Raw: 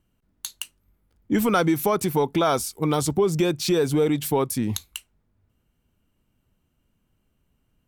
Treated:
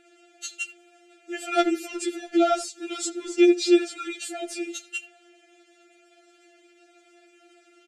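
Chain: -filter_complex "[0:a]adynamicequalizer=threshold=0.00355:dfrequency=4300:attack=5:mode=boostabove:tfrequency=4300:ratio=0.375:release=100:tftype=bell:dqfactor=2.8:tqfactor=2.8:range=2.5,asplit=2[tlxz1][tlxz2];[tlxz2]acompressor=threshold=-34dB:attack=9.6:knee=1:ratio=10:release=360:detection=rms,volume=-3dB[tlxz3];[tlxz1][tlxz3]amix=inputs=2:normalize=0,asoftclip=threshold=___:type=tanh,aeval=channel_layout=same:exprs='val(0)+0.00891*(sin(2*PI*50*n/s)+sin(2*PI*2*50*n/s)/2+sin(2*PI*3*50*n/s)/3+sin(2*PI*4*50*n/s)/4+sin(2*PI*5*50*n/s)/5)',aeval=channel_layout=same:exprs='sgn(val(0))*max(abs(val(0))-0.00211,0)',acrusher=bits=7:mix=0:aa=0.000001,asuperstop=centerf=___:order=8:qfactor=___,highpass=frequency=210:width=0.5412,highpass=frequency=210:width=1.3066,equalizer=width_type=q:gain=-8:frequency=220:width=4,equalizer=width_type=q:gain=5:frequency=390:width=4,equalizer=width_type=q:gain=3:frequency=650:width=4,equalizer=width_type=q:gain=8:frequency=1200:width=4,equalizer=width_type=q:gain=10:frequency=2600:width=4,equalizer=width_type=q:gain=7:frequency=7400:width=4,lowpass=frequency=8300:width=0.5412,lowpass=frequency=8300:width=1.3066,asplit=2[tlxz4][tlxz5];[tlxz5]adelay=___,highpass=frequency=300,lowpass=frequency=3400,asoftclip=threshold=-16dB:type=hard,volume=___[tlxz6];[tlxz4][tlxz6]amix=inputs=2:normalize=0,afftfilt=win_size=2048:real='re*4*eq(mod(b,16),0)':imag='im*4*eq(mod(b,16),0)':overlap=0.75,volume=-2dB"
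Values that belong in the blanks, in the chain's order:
-15dB, 950, 2.5, 80, -14dB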